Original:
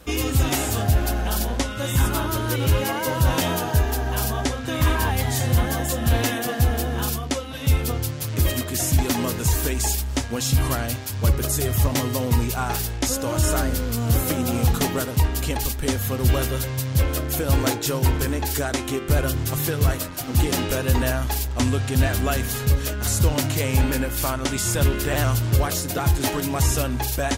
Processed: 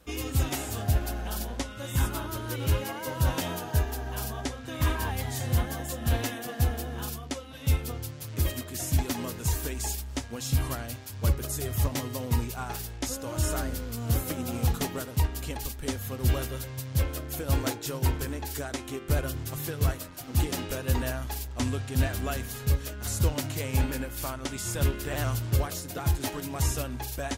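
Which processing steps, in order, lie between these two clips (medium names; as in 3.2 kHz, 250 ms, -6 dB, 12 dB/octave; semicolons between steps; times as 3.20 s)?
upward expansion 1.5:1, over -26 dBFS; trim -5 dB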